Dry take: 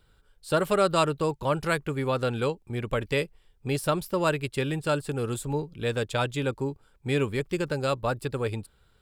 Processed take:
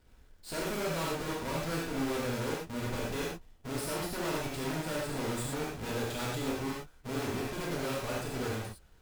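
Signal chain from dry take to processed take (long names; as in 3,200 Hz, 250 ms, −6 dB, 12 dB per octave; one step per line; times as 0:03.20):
each half-wave held at its own peak
tube saturation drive 32 dB, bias 0.5
reverb whose tail is shaped and stops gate 140 ms flat, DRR −5 dB
level −6 dB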